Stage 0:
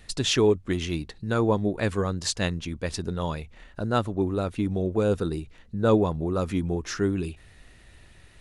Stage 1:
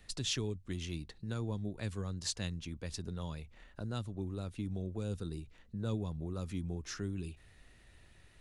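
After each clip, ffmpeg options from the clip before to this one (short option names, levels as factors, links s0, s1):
-filter_complex "[0:a]acrossover=split=200|3000[s0][s1][s2];[s1]acompressor=threshold=0.0126:ratio=3[s3];[s0][s3][s2]amix=inputs=3:normalize=0,volume=0.376"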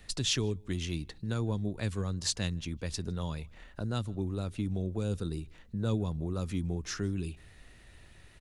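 -filter_complex "[0:a]asplit=2[s0][s1];[s1]adelay=157.4,volume=0.0398,highshelf=f=4000:g=-3.54[s2];[s0][s2]amix=inputs=2:normalize=0,volume=1.88"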